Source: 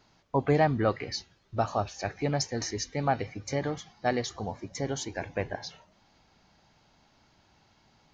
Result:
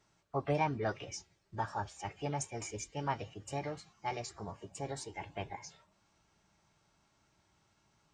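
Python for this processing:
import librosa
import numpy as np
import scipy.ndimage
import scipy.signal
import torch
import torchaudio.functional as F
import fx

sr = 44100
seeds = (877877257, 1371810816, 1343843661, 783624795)

y = fx.notch_comb(x, sr, f0_hz=250.0)
y = fx.formant_shift(y, sr, semitones=4)
y = y * 10.0 ** (-7.5 / 20.0)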